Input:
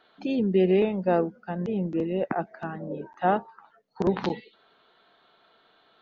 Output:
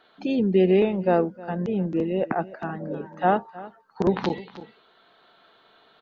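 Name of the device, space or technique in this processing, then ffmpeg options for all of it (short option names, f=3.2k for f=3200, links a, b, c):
ducked delay: -filter_complex "[0:a]asplit=3[a][b][c];[b]adelay=311,volume=-3dB[d];[c]apad=whole_len=279005[e];[d][e]sidechaincompress=threshold=-42dB:ratio=5:attack=39:release=724[f];[a][f]amix=inputs=2:normalize=0,volume=2.5dB"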